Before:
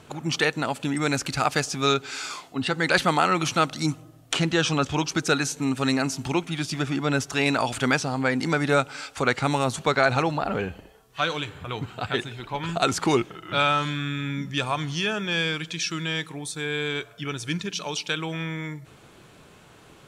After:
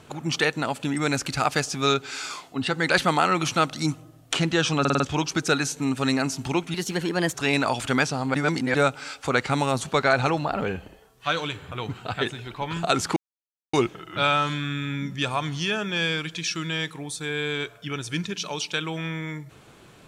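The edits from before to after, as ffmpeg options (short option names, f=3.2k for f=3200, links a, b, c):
-filter_complex "[0:a]asplit=10[a][b][c][d][e][f][g][h][i][j];[a]atrim=end=4.852[k];[b]atrim=start=4.798:end=4.852[l];[c]atrim=start=4.798:end=4.852[m];[d]atrim=start=4.798:end=4.852[n];[e]atrim=start=4.798:end=6.544[o];[f]atrim=start=6.54:end=7.27,asetpts=PTS-STARTPTS,asetrate=53361,aresample=44100[p];[g]atrim=start=7.266:end=8.272[q];[h]atrim=start=8.268:end=8.672,asetpts=PTS-STARTPTS,areverse[r];[i]atrim=start=8.668:end=13.09,asetpts=PTS-STARTPTS,afade=t=out:st=4.418:d=0.004:c=hsin,apad=pad_dur=0.57[s];[j]atrim=start=13.09,asetpts=PTS-STARTPTS,afade=t=in:d=0.004:c=hsin[t];[k][l]acrossfade=d=0.004:c1=hsin:c2=hsin[u];[u][m]acrossfade=d=0.004:c1=hsin:c2=hsin[v];[v][n]acrossfade=d=0.004:c1=hsin:c2=hsin[w];[w][o]acrossfade=d=0.004:c1=hsin:c2=hsin[x];[x][p]acrossfade=d=0.004:c1=hsin:c2=hsin[y];[y][q]acrossfade=d=0.004:c1=hsin:c2=hsin[z];[z][r]acrossfade=d=0.004:c1=hsin:c2=hsin[aa];[s][t]concat=n=2:v=0:a=1[ab];[aa][ab]acrossfade=d=0.004:c1=hsin:c2=hsin"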